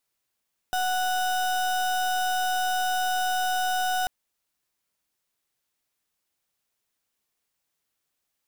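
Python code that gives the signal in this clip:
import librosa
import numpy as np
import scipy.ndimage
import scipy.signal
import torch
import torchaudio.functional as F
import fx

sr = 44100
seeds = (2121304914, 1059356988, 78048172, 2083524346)

y = fx.pulse(sr, length_s=3.34, hz=739.0, level_db=-25.5, duty_pct=33)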